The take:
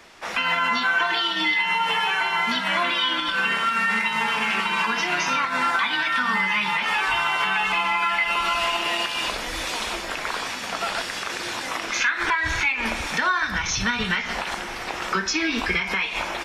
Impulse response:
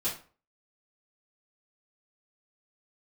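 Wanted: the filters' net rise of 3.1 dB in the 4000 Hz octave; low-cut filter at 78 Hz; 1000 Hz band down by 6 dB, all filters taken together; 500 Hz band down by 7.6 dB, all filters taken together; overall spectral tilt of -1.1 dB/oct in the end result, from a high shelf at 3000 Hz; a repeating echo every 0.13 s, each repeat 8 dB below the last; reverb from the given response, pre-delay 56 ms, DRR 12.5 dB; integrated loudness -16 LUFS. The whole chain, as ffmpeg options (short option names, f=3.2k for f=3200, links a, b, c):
-filter_complex "[0:a]highpass=78,equalizer=f=500:t=o:g=-9,equalizer=f=1k:t=o:g=-5.5,highshelf=f=3k:g=-4,equalizer=f=4k:t=o:g=8,aecho=1:1:130|260|390|520|650:0.398|0.159|0.0637|0.0255|0.0102,asplit=2[a][b];[1:a]atrim=start_sample=2205,adelay=56[c];[b][c]afir=irnorm=-1:irlink=0,volume=-17.5dB[d];[a][d]amix=inputs=2:normalize=0,volume=6dB"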